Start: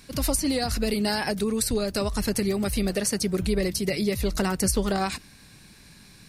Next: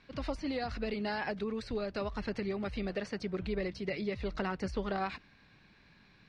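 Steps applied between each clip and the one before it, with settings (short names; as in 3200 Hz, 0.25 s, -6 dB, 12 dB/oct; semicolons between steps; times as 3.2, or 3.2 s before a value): Bessel low-pass 2500 Hz, order 4; low shelf 440 Hz -7.5 dB; gain -5 dB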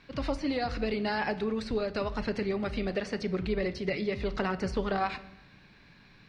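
shoebox room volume 340 m³, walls mixed, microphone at 0.3 m; gain +4.5 dB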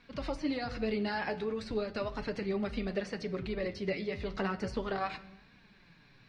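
flange 0.36 Hz, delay 4 ms, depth 7.9 ms, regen +40%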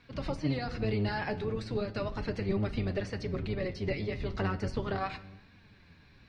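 octaver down 1 oct, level +2 dB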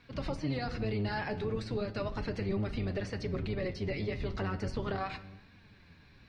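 limiter -25 dBFS, peak gain reduction 5.5 dB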